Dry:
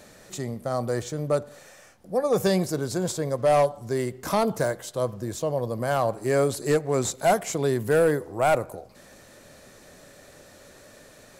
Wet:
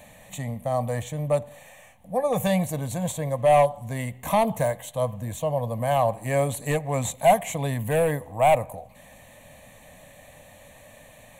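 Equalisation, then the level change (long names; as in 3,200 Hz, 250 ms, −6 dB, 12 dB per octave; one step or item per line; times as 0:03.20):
phaser with its sweep stopped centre 1,400 Hz, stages 6
+4.5 dB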